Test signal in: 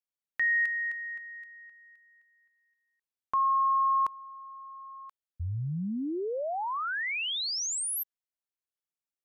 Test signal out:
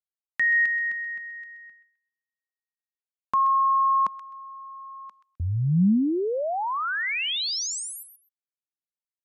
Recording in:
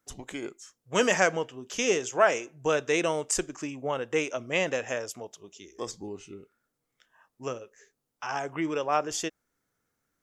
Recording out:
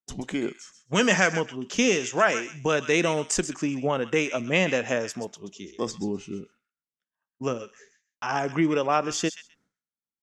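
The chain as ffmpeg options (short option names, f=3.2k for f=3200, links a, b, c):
-filter_complex "[0:a]lowpass=6.9k,agate=range=-33dB:threshold=-48dB:ratio=3:release=286:detection=rms,equalizer=f=200:t=o:w=1:g=10.5,acrossover=split=1200[a][b];[a]alimiter=limit=-19.5dB:level=0:latency=1:release=344[c];[b]aecho=1:1:129|258:0.299|0.0508[d];[c][d]amix=inputs=2:normalize=0,volume=4.5dB"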